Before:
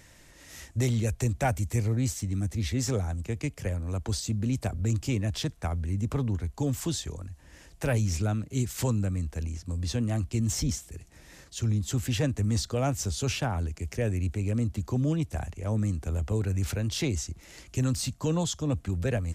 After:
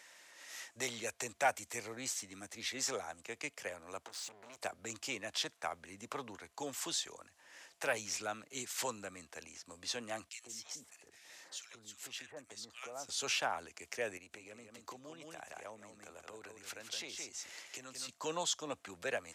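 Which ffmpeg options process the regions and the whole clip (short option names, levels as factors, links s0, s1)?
-filter_complex "[0:a]asettb=1/sr,asplit=3[s0][s1][s2];[s0]atrim=end=4.044[s3];[s1]atrim=start=4.04:end=4.61,asetpts=PTS-STARTPTS,afade=t=in:d=0.004:c=qsin,afade=t=out:st=0.566:d=0.004:c=qsin,acompressor=threshold=0.0282:ratio=6:attack=3.2:release=140:knee=1:detection=peak,asoftclip=type=hard:threshold=0.0106[s4];[s2]atrim=start=4.606[s5];[s3][s4]acrossfade=d=0.004:c1=hsin:c2=qsin[s6];[s6][s5]acrossfade=d=0.004:c1=qsin:c2=hsin,asettb=1/sr,asplit=3[s7][s8][s9];[s7]atrim=end=10.294[s10];[s8]atrim=start=10.29:end=13.09,asetpts=PTS-STARTPTS,afade=t=in:d=0.004:c=qsin,afade=t=out:st=2.796:d=0.004:c=qsin,acrossover=split=1600[s11][s12];[s11]adelay=130[s13];[s13][s12]amix=inputs=2:normalize=0,atrim=end_sample=123480,acompressor=threshold=0.01:ratio=2.5:attack=3.2:release=140:knee=1:detection=peak[s14];[s9]atrim=start=13.086[s15];[s10][s14]acrossfade=d=0.004:c1=hsin:c2=qsin[s16];[s16][s15]acrossfade=d=0.004:c1=qsin:c2=hsin,asettb=1/sr,asplit=3[s17][s18][s19];[s17]atrim=end=14.174[s20];[s18]atrim=start=14.17:end=18.09,asetpts=PTS-STARTPTS,afade=t=in:d=0.004:c=qsin,afade=t=out:st=3.916:d=0.004:c=qsin,aecho=1:1:169:0.531,atrim=end_sample=172872,acompressor=threshold=0.02:ratio=4:attack=3.2:release=140:knee=1:detection=peak[s21];[s19]atrim=start=18.086[s22];[s20][s21]acrossfade=d=0.004:c1=hsin:c2=qsin[s23];[s23][s22]acrossfade=d=0.004:c1=qsin:c2=hsin,highpass=740,highshelf=f=10000:g=-9"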